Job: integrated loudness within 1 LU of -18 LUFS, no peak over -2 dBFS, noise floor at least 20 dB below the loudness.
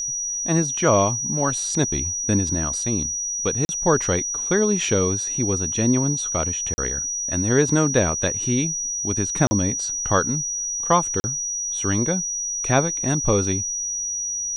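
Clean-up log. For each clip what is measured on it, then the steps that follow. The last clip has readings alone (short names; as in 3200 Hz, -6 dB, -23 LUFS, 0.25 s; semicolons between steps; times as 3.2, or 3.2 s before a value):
dropouts 4; longest dropout 40 ms; steady tone 5800 Hz; tone level -24 dBFS; loudness -21.0 LUFS; peak -3.0 dBFS; loudness target -18.0 LUFS
-> interpolate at 3.65/6.74/9.47/11.2, 40 ms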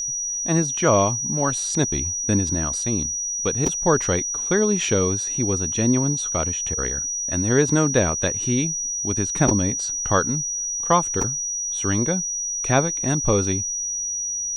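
dropouts 0; steady tone 5800 Hz; tone level -24 dBFS
-> notch 5800 Hz, Q 30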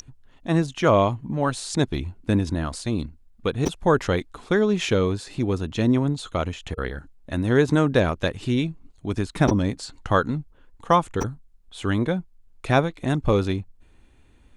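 steady tone none; loudness -24.0 LUFS; peak -4.0 dBFS; loudness target -18.0 LUFS
-> gain +6 dB; limiter -2 dBFS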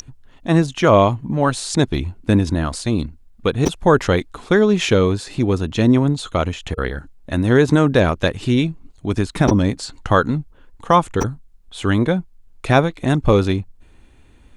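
loudness -18.5 LUFS; peak -2.0 dBFS; noise floor -49 dBFS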